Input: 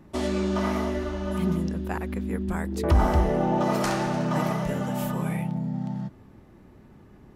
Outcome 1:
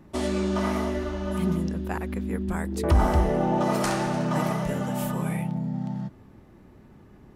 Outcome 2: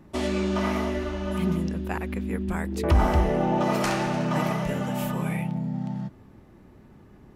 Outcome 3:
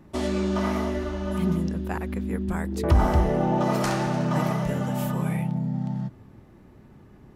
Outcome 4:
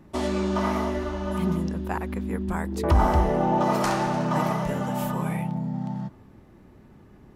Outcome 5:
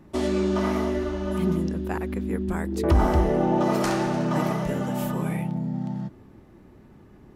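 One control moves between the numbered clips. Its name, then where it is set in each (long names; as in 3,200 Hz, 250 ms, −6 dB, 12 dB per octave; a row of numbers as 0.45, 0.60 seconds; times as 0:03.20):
dynamic equaliser, frequency: 9,200, 2,500, 120, 960, 340 Hertz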